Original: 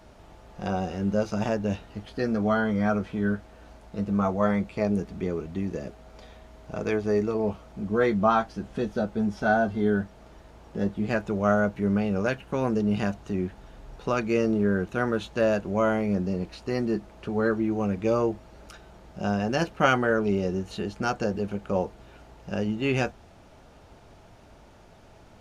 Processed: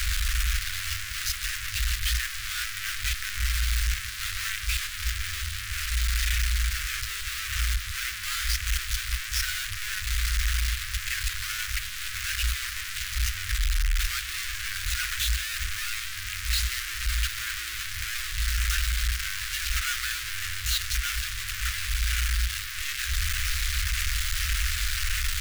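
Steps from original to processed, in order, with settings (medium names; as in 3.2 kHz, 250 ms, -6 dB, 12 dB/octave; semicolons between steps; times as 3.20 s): one-bit comparator; in parallel at -3.5 dB: decimation with a swept rate 12×, swing 60% 1.7 Hz; on the sum: inverse Chebyshev band-stop 130–900 Hz, stop band 40 dB; trim +2 dB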